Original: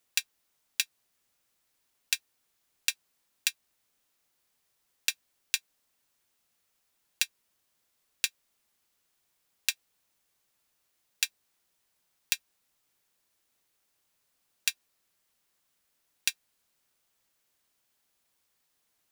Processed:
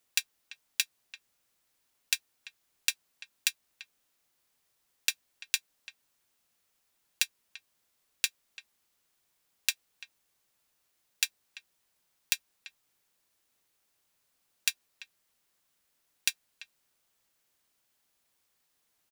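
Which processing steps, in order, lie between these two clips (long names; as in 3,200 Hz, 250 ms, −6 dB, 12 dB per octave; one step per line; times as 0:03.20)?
far-end echo of a speakerphone 340 ms, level −15 dB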